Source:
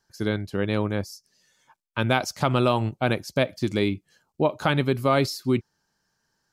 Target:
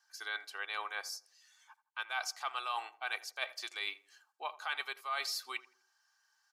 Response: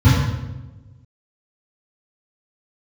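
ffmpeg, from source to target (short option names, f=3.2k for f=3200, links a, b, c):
-filter_complex "[0:a]highpass=f=910:w=0.5412,highpass=f=910:w=1.3066,highshelf=f=9.4k:g=-5.5,aecho=1:1:2.6:0.49,areverse,acompressor=threshold=-35dB:ratio=5,areverse,asplit=2[a][b];[b]adelay=82,lowpass=f=1.3k:p=1,volume=-16dB,asplit=2[c][d];[d]adelay=82,lowpass=f=1.3k:p=1,volume=0.42,asplit=2[e][f];[f]adelay=82,lowpass=f=1.3k:p=1,volume=0.42,asplit=2[g][h];[h]adelay=82,lowpass=f=1.3k:p=1,volume=0.42[i];[a][c][e][g][i]amix=inputs=5:normalize=0"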